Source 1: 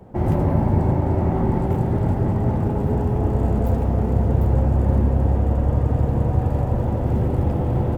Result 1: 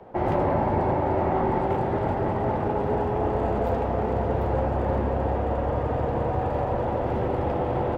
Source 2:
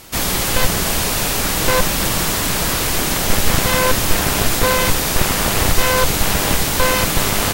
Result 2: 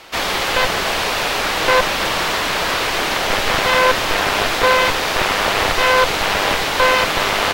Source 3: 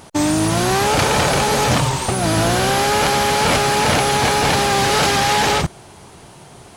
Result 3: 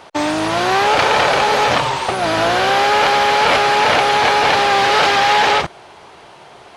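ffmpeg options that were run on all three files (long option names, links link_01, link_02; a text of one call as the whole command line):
ffmpeg -i in.wav -filter_complex "[0:a]acrossover=split=390 4600:gain=0.178 1 0.126[link_01][link_02][link_03];[link_01][link_02][link_03]amix=inputs=3:normalize=0,volume=4.5dB" out.wav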